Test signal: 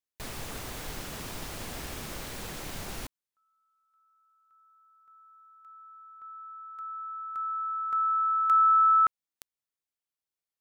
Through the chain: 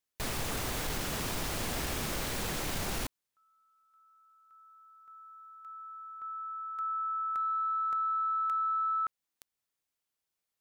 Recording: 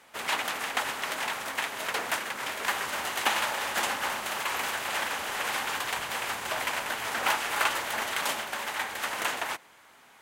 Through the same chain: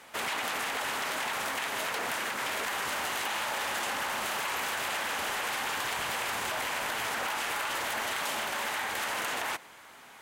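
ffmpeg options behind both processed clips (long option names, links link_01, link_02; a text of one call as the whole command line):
ffmpeg -i in.wav -filter_complex "[0:a]asplit=2[link_01][link_02];[link_02]alimiter=limit=-22dB:level=0:latency=1:release=198,volume=2dB[link_03];[link_01][link_03]amix=inputs=2:normalize=0,acompressor=threshold=-28dB:ratio=10:attack=5.1:release=20:knee=1:detection=rms,asoftclip=type=hard:threshold=-21.5dB,volume=-2.5dB" out.wav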